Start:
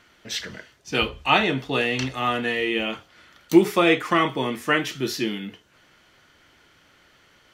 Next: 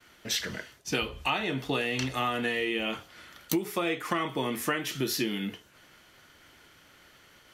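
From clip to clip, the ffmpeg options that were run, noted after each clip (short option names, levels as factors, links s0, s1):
-af "agate=range=0.0224:threshold=0.002:ratio=3:detection=peak,equalizer=f=12000:t=o:w=0.9:g=9,acompressor=threshold=0.0447:ratio=10,volume=1.19"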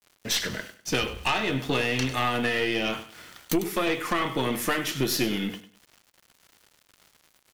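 -af "aeval=exprs='val(0)*gte(abs(val(0)),0.00335)':c=same,aecho=1:1:99|198|297:0.211|0.0571|0.0154,aeval=exprs='0.335*(cos(1*acos(clip(val(0)/0.335,-1,1)))-cos(1*PI/2))+0.15*(cos(5*acos(clip(val(0)/0.335,-1,1)))-cos(5*PI/2))+0.0668*(cos(8*acos(clip(val(0)/0.335,-1,1)))-cos(8*PI/2))':c=same,volume=0.501"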